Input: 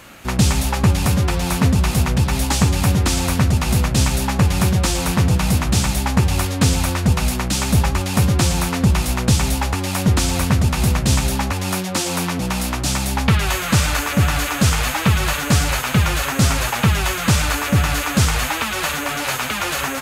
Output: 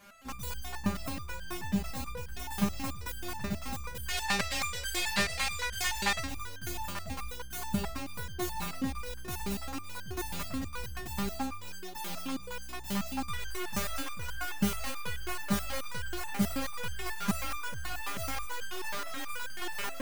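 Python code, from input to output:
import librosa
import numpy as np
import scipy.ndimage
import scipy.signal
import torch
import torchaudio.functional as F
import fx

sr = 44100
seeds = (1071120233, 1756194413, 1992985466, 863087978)

y = fx.tracing_dist(x, sr, depth_ms=0.25)
y = fx.graphic_eq(y, sr, hz=(125, 250, 500, 2000, 4000, 8000), db=(-3, -8, 6, 12, 9, 9), at=(4.08, 6.2))
y = fx.resonator_held(y, sr, hz=9.3, low_hz=200.0, high_hz=1600.0)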